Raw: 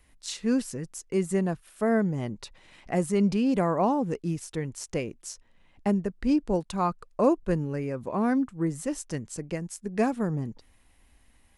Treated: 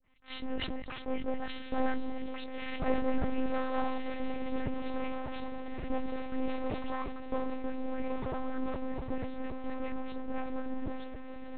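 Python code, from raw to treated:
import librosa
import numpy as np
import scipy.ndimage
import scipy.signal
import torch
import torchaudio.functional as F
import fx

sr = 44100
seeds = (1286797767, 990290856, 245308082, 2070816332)

y = fx.spec_delay(x, sr, highs='late', ms=160)
y = fx.doppler_pass(y, sr, speed_mps=22, closest_m=26.0, pass_at_s=2.39)
y = fx.recorder_agc(y, sr, target_db=-24.0, rise_db_per_s=73.0, max_gain_db=30)
y = fx.highpass(y, sr, hz=66.0, slope=6)
y = fx.air_absorb(y, sr, metres=160.0)
y = fx.echo_diffused(y, sr, ms=1455, feedback_pct=53, wet_db=-5.5)
y = np.maximum(y, 0.0)
y = fx.lpc_monotone(y, sr, seeds[0], pitch_hz=260.0, order=10)
y = fx.sustainer(y, sr, db_per_s=35.0)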